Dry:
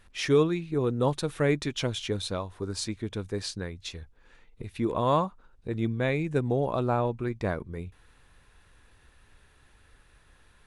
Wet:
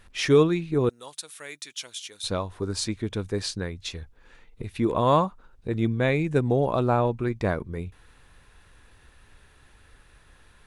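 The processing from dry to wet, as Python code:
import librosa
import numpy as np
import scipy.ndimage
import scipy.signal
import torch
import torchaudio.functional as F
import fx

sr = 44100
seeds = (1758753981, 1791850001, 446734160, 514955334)

y = fx.differentiator(x, sr, at=(0.89, 2.24))
y = F.gain(torch.from_numpy(y), 4.0).numpy()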